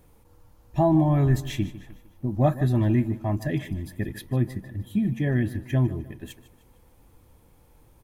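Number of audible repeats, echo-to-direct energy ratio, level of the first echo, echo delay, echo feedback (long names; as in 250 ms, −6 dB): 3, −15.0 dB, −16.0 dB, 152 ms, 44%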